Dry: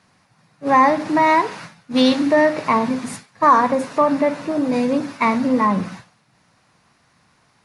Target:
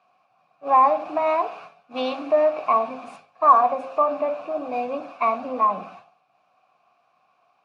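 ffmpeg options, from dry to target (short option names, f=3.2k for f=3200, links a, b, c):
-filter_complex "[0:a]asplit=3[a][b][c];[a]bandpass=f=730:t=q:w=8,volume=0dB[d];[b]bandpass=f=1.09k:t=q:w=8,volume=-6dB[e];[c]bandpass=f=2.44k:t=q:w=8,volume=-9dB[f];[d][e][f]amix=inputs=3:normalize=0,bandreject=f=53.26:t=h:w=4,bandreject=f=106.52:t=h:w=4,bandreject=f=159.78:t=h:w=4,bandreject=f=213.04:t=h:w=4,bandreject=f=266.3:t=h:w=4,bandreject=f=319.56:t=h:w=4,bandreject=f=372.82:t=h:w=4,bandreject=f=426.08:t=h:w=4,bandreject=f=479.34:t=h:w=4,bandreject=f=532.6:t=h:w=4,bandreject=f=585.86:t=h:w=4,bandreject=f=639.12:t=h:w=4,bandreject=f=692.38:t=h:w=4,bandreject=f=745.64:t=h:w=4,bandreject=f=798.9:t=h:w=4,bandreject=f=852.16:t=h:w=4,bandreject=f=905.42:t=h:w=4,volume=6.5dB"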